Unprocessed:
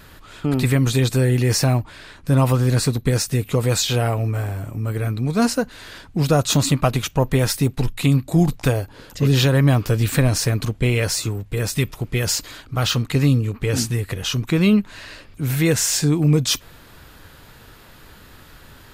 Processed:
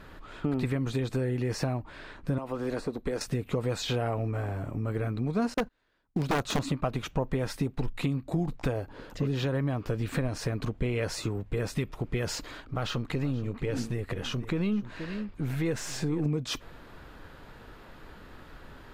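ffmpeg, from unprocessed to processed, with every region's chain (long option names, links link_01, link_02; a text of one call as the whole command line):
ffmpeg -i in.wav -filter_complex "[0:a]asettb=1/sr,asplit=3[link_01][link_02][link_03];[link_01]atrim=end=2.384[link_04];[link_02]atrim=start=2.38:end=3.21,asetpts=PTS-STARTPTS,afade=type=in:duration=0.004:curve=qsin,afade=type=out:start_time=0.826:duration=0.004:curve=qsin,equalizer=frequency=120:width=1.5:gain=-13.5,acrossover=split=400|970[link_05][link_06][link_07];[link_05]acompressor=threshold=-31dB:ratio=4[link_08];[link_06]acompressor=threshold=-31dB:ratio=4[link_09];[link_07]acompressor=threshold=-38dB:ratio=4[link_10];[link_08][link_09][link_10]amix=inputs=3:normalize=0[link_11];[link_03]atrim=start=3.206[link_12];[link_04][link_11]acrossfade=duration=0.004:curve1=hsin:curve2=qsin[link_13];[link_13][link_12]acrossfade=duration=0.004:curve1=qsin:curve2=hsin,asettb=1/sr,asplit=3[link_14][link_15][link_16];[link_14]atrim=end=5.544[link_17];[link_15]atrim=start=5.54:end=6.59,asetpts=PTS-STARTPTS,afade=type=in:duration=0.004:curve=qsin,afade=type=out:start_time=1.046:duration=0.004:curve=qsin,agate=range=-30dB:threshold=-33dB:ratio=16:release=100:detection=peak,acrusher=bits=6:mode=log:mix=0:aa=0.000001,aeval=exprs='(mod(2.99*val(0)+1,2)-1)/2.99':channel_layout=same[link_18];[link_16]atrim=start=6.586[link_19];[link_17][link_18]acrossfade=duration=0.004:curve1=hsin:curve2=qsin[link_20];[link_20][link_19]acrossfade=duration=0.004:curve1=qsin:curve2=hsin,asettb=1/sr,asplit=3[link_21][link_22][link_23];[link_21]atrim=end=12.604[link_24];[link_22]atrim=start=12.6:end=16.26,asetpts=PTS-STARTPTS,afade=type=in:duration=0.004:curve=qsin,afade=type=out:start_time=3.656:duration=0.004:curve=qsin,aeval=exprs='if(lt(val(0),0),0.708*val(0),val(0))':channel_layout=same,aecho=1:1:476:0.15,atrim=end_sample=161406,acompressor=threshold=-23dB:ratio=2:attack=3.2:release=140:knee=1:detection=peak[link_25];[link_23]atrim=start=16.256[link_26];[link_24][link_25]acrossfade=duration=0.004:curve1=hsin:curve2=qsin[link_27];[link_27][link_26]acrossfade=duration=0.004:curve1=qsin:curve2=hsin,lowpass=frequency=1300:poles=1,acompressor=threshold=-23dB:ratio=6,equalizer=frequency=100:width=0.88:gain=-6.5" out.wav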